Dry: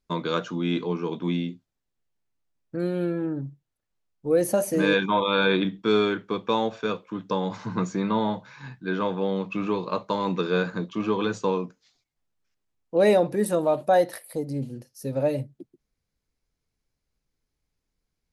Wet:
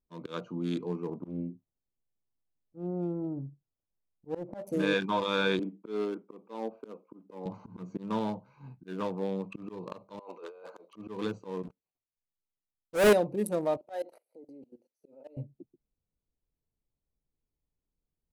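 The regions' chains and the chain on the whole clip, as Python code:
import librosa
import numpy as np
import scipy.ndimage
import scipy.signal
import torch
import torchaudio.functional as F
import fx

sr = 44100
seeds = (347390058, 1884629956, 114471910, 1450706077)

y = fx.chain(x, sr, fx.lowpass(hz=1600.0, slope=24),
    fx.doppler_dist(depth_ms=0.35), at=(1.07, 4.67))
y = fx.chain(y, sr, fx.highpass(hz=220.0, slope=24),
    fx.spacing_loss(db_at_10k=30), at=(5.59, 7.46))
y = fx.chain(y, sr, fx.cheby1_highpass(hz=520.0, order=3),
    fx.over_compress(threshold_db=-37.0, ratio=-1.0), at=(10.19, 10.96))
y = fx.chain(y, sr, fx.dead_time(dead_ms=0.1),
    fx.lowpass(hz=3900.0, slope=6),
    fx.leveller(passes=5), at=(11.63, 13.13))
y = fx.chain(y, sr, fx.highpass(hz=290.0, slope=24),
    fx.notch(hz=1100.0, q=7.5),
    fx.level_steps(step_db=21), at=(13.77, 15.37))
y = fx.wiener(y, sr, points=25)
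y = fx.peak_eq(y, sr, hz=9900.0, db=6.0, octaves=1.5)
y = fx.auto_swell(y, sr, attack_ms=163.0)
y = F.gain(torch.from_numpy(y), -6.0).numpy()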